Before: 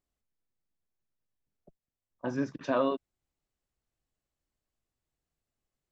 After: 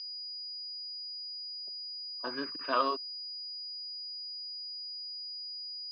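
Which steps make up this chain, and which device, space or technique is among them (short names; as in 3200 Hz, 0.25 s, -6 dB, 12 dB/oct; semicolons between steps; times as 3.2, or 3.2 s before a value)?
toy sound module (decimation joined by straight lines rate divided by 6×; pulse-width modulation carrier 4900 Hz; speaker cabinet 550–4500 Hz, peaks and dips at 560 Hz -8 dB, 800 Hz -8 dB, 1200 Hz +6 dB, 2800 Hz +7 dB); gain +3.5 dB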